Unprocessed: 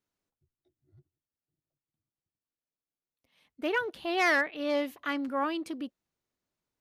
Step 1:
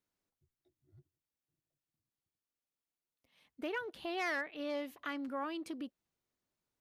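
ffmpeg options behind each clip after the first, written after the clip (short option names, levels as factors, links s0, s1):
-af "acompressor=threshold=0.0112:ratio=2,volume=0.794"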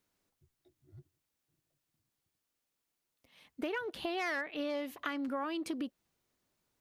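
-af "acompressor=threshold=0.00891:ratio=6,volume=2.51"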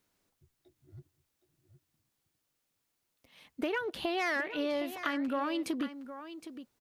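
-af "aecho=1:1:765:0.251,volume=1.5"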